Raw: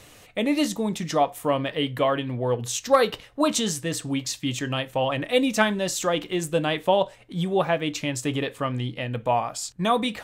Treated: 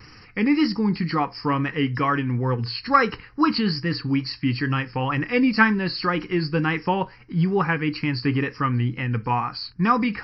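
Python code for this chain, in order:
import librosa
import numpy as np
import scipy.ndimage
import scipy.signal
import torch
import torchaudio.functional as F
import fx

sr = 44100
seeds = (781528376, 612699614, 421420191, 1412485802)

y = fx.freq_compress(x, sr, knee_hz=3900.0, ratio=4.0)
y = fx.wow_flutter(y, sr, seeds[0], rate_hz=2.1, depth_cents=54.0)
y = fx.fixed_phaser(y, sr, hz=1500.0, stages=4)
y = y * 10.0 ** (7.0 / 20.0)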